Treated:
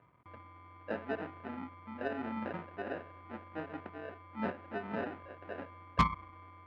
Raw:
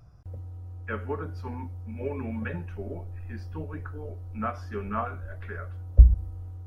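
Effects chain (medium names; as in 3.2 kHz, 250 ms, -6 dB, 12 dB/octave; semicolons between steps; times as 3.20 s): 2.53–3.60 s: dynamic bell 520 Hz, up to +6 dB, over -55 dBFS, Q 2.4; Chebyshev shaper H 3 -13 dB, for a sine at -2.5 dBFS; sample-and-hold 40×; cabinet simulation 260–2300 Hz, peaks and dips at 260 Hz +3 dB, 410 Hz -4 dB, 1.1 kHz +4 dB; saturation -27 dBFS, distortion -7 dB; trim +8 dB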